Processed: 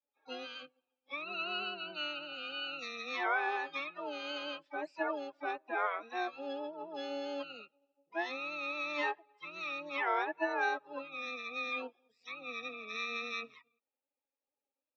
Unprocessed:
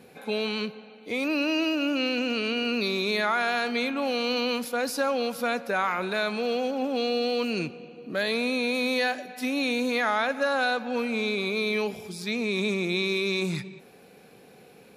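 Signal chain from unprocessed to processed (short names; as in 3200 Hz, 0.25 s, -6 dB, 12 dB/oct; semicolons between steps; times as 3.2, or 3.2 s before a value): per-bin expansion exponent 2; mistuned SSB +83 Hz 560–3400 Hz; harmoniser -12 st -5 dB, +7 st -12 dB; gain -4.5 dB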